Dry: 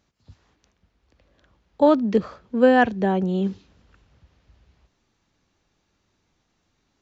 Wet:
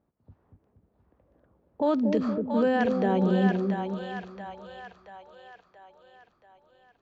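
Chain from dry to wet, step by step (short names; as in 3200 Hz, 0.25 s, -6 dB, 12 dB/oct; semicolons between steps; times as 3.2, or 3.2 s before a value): low-pass opened by the level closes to 770 Hz, open at -15.5 dBFS; low shelf 100 Hz -10 dB; limiter -17 dBFS, peak gain reduction 11 dB; split-band echo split 620 Hz, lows 0.235 s, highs 0.68 s, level -3.5 dB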